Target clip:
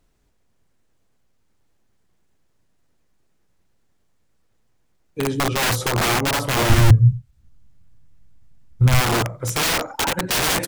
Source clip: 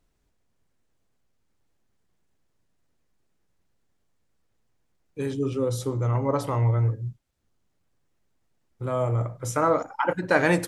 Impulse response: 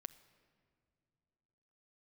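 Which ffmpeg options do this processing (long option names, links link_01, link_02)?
-filter_complex "[0:a]asplit=3[link_01][link_02][link_03];[link_01]afade=type=out:start_time=5.48:duration=0.02[link_04];[link_02]equalizer=frequency=1100:width=0.57:gain=9.5,afade=type=in:start_time=5.48:duration=0.02,afade=type=out:start_time=6.08:duration=0.02[link_05];[link_03]afade=type=in:start_time=6.08:duration=0.02[link_06];[link_04][link_05][link_06]amix=inputs=3:normalize=0,aecho=1:1:88:0.141,aeval=exprs='(mod(11.2*val(0)+1,2)-1)/11.2':channel_layout=same,asplit=3[link_07][link_08][link_09];[link_07]afade=type=out:start_time=6.68:duration=0.02[link_10];[link_08]asubboost=boost=8.5:cutoff=140,afade=type=in:start_time=6.68:duration=0.02,afade=type=out:start_time=8.99:duration=0.02[link_11];[link_09]afade=type=in:start_time=8.99:duration=0.02[link_12];[link_10][link_11][link_12]amix=inputs=3:normalize=0,volume=6dB"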